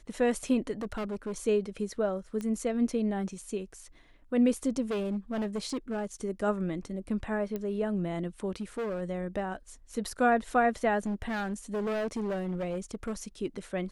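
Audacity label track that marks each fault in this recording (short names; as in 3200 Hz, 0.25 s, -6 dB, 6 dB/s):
0.810000	1.380000	clipped -30.5 dBFS
2.410000	2.410000	pop -24 dBFS
4.820000	6.050000	clipped -28 dBFS
7.560000	7.560000	pop -22 dBFS
8.600000	9.020000	clipped -30 dBFS
11.060000	13.130000	clipped -28.5 dBFS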